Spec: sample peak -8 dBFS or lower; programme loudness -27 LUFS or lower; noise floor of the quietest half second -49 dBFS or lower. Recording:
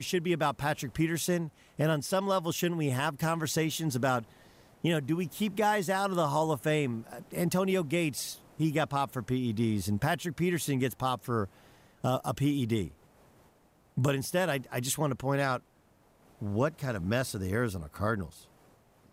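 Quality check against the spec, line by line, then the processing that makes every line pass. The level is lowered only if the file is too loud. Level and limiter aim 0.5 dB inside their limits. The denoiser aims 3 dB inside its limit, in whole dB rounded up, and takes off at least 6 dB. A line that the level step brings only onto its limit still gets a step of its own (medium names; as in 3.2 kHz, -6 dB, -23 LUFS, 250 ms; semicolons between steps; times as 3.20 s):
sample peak -17.5 dBFS: pass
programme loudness -31.0 LUFS: pass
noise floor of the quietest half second -64 dBFS: pass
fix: none needed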